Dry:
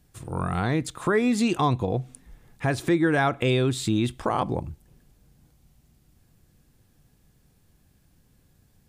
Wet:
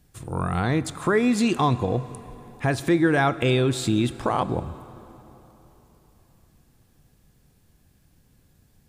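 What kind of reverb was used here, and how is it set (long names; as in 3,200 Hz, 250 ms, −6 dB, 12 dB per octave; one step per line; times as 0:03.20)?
dense smooth reverb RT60 3.8 s, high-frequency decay 0.7×, DRR 15 dB
level +1.5 dB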